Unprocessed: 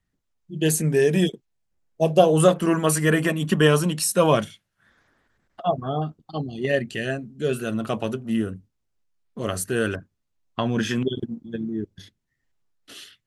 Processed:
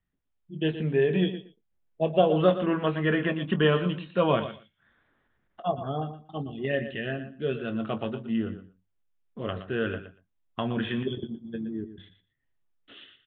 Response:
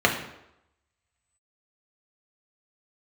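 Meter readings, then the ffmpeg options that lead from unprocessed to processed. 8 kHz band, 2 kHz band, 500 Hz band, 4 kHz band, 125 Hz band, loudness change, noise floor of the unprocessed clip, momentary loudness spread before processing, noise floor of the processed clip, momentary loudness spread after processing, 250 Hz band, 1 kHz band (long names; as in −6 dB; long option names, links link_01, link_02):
below −40 dB, −5.0 dB, −5.0 dB, −5.5 dB, −6.0 dB, −5.5 dB, −77 dBFS, 14 LU, −76 dBFS, 13 LU, −4.5 dB, −5.0 dB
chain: -filter_complex "[0:a]asplit=2[link_01][link_02];[link_02]adelay=22,volume=-12dB[link_03];[link_01][link_03]amix=inputs=2:normalize=0,asplit=2[link_04][link_05];[link_05]aecho=0:1:118|236:0.266|0.0399[link_06];[link_04][link_06]amix=inputs=2:normalize=0,aresample=8000,aresample=44100,volume=-5.5dB"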